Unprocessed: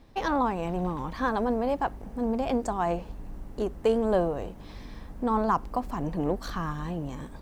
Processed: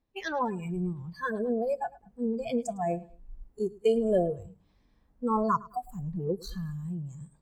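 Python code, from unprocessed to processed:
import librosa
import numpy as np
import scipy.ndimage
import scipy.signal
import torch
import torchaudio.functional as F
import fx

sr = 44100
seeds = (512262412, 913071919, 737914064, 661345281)

p1 = fx.noise_reduce_blind(x, sr, reduce_db=25)
y = p1 + fx.echo_feedback(p1, sr, ms=106, feedback_pct=33, wet_db=-21.0, dry=0)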